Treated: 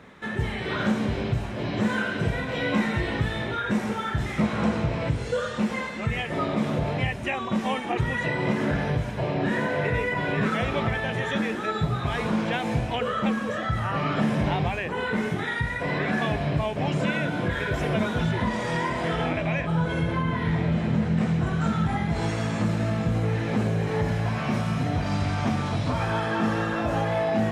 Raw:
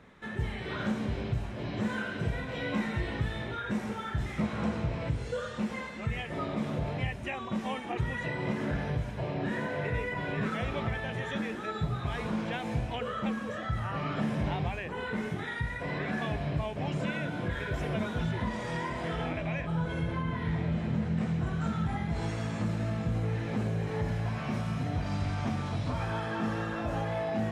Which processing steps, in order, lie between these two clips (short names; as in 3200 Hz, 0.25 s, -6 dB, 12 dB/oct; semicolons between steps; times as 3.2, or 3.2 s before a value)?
low shelf 67 Hz -9.5 dB; gain +8 dB